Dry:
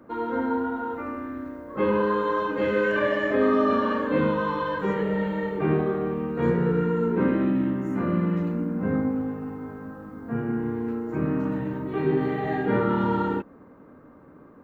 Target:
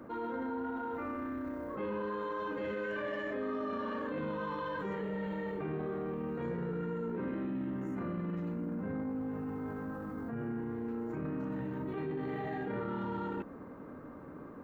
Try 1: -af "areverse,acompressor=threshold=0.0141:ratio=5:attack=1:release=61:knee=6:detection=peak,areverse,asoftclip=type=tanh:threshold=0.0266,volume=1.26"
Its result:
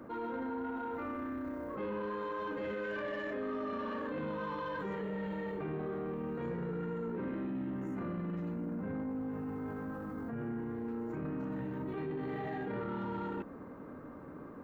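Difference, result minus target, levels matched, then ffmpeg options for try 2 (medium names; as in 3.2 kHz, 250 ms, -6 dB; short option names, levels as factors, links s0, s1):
saturation: distortion +19 dB
-af "areverse,acompressor=threshold=0.0141:ratio=5:attack=1:release=61:knee=6:detection=peak,areverse,asoftclip=type=tanh:threshold=0.0891,volume=1.26"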